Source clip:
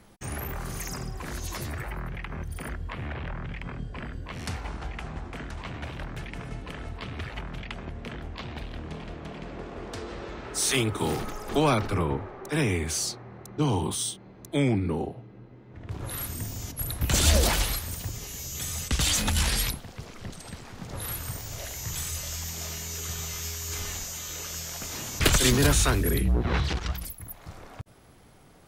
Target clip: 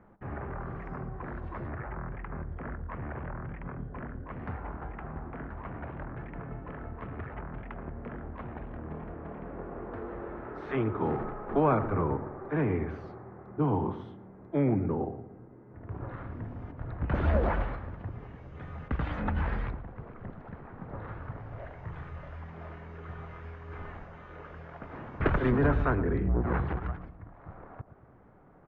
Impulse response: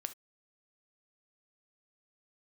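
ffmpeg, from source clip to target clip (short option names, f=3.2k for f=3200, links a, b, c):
-filter_complex "[0:a]lowpass=f=1.6k:w=0.5412,lowpass=f=1.6k:w=1.3066,lowshelf=f=130:g=-4.5,asplit=2[a][b];[b]adelay=115,lowpass=f=890:p=1,volume=-11dB,asplit=2[c][d];[d]adelay=115,lowpass=f=890:p=1,volume=0.5,asplit=2[e][f];[f]adelay=115,lowpass=f=890:p=1,volume=0.5,asplit=2[g][h];[h]adelay=115,lowpass=f=890:p=1,volume=0.5,asplit=2[i][j];[j]adelay=115,lowpass=f=890:p=1,volume=0.5[k];[a][c][e][g][i][k]amix=inputs=6:normalize=0,volume=-1dB"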